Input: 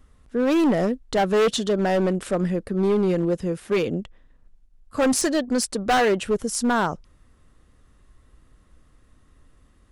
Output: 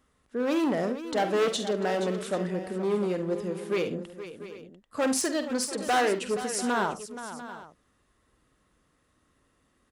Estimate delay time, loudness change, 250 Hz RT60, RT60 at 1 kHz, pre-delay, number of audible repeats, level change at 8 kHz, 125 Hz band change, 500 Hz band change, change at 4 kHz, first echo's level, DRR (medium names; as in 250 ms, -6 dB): 49 ms, -6.0 dB, no reverb, no reverb, no reverb, 4, -4.0 dB, -9.0 dB, -5.5 dB, -4.0 dB, -10.5 dB, no reverb